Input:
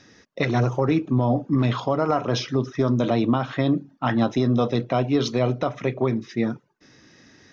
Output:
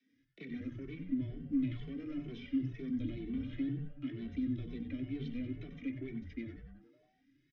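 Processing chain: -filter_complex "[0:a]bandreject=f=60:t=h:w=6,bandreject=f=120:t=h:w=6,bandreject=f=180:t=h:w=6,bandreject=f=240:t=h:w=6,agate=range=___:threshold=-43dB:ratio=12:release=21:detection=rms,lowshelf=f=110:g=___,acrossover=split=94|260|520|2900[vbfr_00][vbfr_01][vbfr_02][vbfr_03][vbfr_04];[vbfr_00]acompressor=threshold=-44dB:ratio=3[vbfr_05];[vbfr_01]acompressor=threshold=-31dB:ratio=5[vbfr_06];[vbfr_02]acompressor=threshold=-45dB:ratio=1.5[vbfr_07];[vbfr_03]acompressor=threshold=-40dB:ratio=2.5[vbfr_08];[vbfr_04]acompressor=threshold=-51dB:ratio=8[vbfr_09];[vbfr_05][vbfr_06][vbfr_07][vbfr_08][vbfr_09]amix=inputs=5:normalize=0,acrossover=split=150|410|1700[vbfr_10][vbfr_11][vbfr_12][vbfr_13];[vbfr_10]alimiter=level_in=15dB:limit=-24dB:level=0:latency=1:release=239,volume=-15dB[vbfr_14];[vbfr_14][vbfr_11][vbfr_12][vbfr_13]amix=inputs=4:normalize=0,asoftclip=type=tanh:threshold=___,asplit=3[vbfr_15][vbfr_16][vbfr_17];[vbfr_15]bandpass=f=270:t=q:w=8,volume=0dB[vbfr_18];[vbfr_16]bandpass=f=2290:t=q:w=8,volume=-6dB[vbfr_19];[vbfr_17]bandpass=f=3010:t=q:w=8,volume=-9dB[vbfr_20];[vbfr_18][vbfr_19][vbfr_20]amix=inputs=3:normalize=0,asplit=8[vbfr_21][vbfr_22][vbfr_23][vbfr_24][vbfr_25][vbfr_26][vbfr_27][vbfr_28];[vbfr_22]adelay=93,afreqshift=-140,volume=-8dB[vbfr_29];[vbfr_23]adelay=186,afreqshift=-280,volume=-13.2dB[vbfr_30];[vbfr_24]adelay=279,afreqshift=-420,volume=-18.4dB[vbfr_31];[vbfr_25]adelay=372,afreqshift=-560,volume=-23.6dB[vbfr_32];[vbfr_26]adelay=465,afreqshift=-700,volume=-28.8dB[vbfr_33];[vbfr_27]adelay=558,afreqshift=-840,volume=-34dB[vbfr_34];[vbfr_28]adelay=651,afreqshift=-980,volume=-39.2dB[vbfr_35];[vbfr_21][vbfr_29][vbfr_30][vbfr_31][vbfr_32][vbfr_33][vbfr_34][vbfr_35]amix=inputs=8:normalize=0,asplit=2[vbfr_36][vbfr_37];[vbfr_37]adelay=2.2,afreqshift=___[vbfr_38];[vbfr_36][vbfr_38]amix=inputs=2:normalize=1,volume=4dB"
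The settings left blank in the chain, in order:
-13dB, -3.5, -26dB, 2.1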